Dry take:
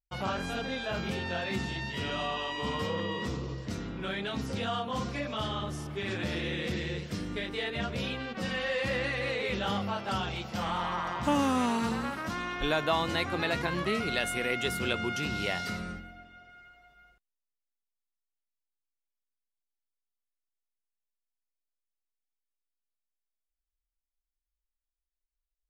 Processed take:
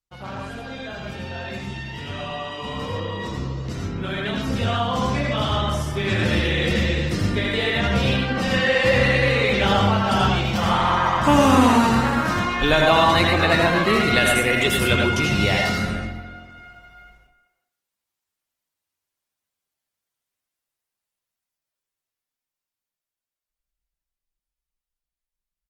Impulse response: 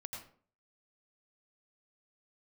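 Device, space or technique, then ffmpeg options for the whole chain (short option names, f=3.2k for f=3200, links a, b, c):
speakerphone in a meeting room: -filter_complex "[1:a]atrim=start_sample=2205[a];[0:a][a]afir=irnorm=-1:irlink=0,asplit=2[b][c];[c]adelay=370,highpass=300,lowpass=3.4k,asoftclip=type=hard:threshold=-27.5dB,volume=-17dB[d];[b][d]amix=inputs=2:normalize=0,dynaudnorm=f=290:g=31:m=13dB,volume=2.5dB" -ar 48000 -c:a libopus -b:a 20k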